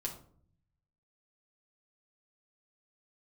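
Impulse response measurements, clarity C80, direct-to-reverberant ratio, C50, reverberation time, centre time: 13.0 dB, -2.0 dB, 8.5 dB, 0.55 s, 17 ms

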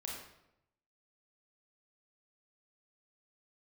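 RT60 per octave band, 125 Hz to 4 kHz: 1.1, 0.95, 0.85, 0.80, 0.70, 0.60 s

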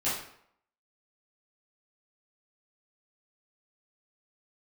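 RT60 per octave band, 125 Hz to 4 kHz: 0.60, 0.60, 0.65, 0.70, 0.60, 0.50 s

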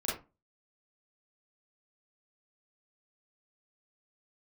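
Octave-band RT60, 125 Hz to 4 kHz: 0.40, 0.35, 0.25, 0.30, 0.25, 0.15 s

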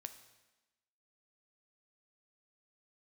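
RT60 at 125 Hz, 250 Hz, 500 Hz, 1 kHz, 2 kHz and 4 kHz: 0.90, 1.2, 1.1, 1.1, 1.1, 1.1 s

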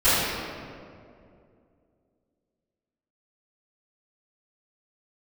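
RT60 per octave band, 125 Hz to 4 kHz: 2.9, 2.9, 2.8, 2.1, 1.6, 1.2 s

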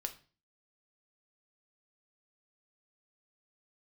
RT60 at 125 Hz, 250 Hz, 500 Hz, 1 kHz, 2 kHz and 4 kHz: 0.50, 0.50, 0.40, 0.35, 0.35, 0.35 s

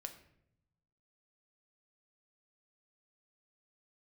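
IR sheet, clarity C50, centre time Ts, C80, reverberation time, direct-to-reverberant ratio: 11.0 dB, 11 ms, 13.5 dB, 0.75 s, 6.0 dB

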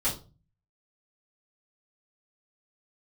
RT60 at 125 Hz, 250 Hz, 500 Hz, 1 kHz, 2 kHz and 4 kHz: 0.70, 0.50, 0.35, 0.30, 0.25, 0.25 s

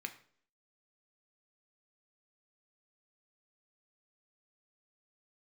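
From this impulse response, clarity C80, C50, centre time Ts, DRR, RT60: 17.0 dB, 13.5 dB, 8 ms, 6.0 dB, 0.55 s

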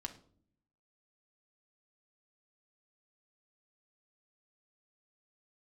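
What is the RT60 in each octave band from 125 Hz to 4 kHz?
1.0, 0.95, 0.65, 0.45, 0.35, 0.35 s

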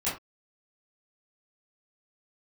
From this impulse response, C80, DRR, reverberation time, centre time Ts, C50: 12.5 dB, -11.5 dB, not exponential, 35 ms, 6.5 dB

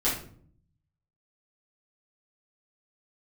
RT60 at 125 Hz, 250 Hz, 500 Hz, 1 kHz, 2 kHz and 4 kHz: 1.2, 0.85, 0.65, 0.45, 0.40, 0.35 s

